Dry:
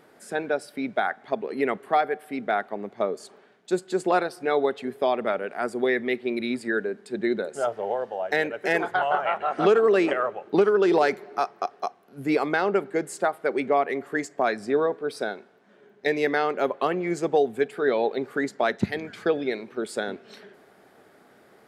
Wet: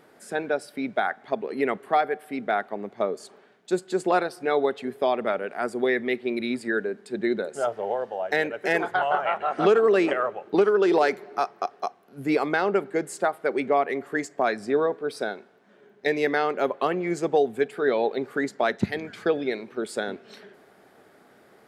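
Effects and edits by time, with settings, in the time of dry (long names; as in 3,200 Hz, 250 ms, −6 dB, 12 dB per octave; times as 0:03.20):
0:10.54–0:11.15: high-pass filter 180 Hz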